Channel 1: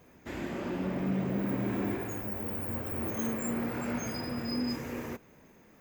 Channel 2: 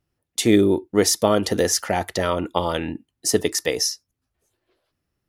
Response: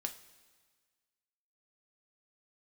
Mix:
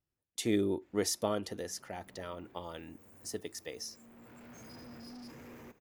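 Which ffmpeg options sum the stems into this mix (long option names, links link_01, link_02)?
-filter_complex "[0:a]asoftclip=type=tanh:threshold=-37.5dB,adelay=550,volume=-9dB,asplit=2[link_01][link_02];[link_02]volume=-21dB[link_03];[1:a]volume=-14dB,afade=type=out:start_time=1.28:duration=0.3:silence=0.473151,asplit=2[link_04][link_05];[link_05]apad=whole_len=280139[link_06];[link_01][link_06]sidechaincompress=threshold=-49dB:ratio=5:attack=6.6:release=957[link_07];[link_03]aecho=0:1:236:1[link_08];[link_07][link_04][link_08]amix=inputs=3:normalize=0"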